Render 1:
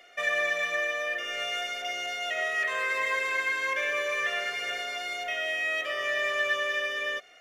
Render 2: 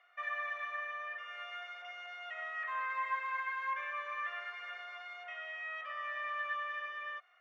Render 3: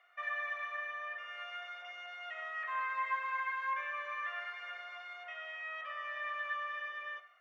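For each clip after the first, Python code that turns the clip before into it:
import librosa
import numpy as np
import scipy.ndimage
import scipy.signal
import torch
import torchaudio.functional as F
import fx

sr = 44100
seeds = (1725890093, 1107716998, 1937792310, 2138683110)

y1 = fx.ladder_bandpass(x, sr, hz=1200.0, resonance_pct=60)
y1 = y1 * librosa.db_to_amplitude(1.0)
y2 = fx.rev_gated(y1, sr, seeds[0], gate_ms=220, shape='falling', drr_db=12.0)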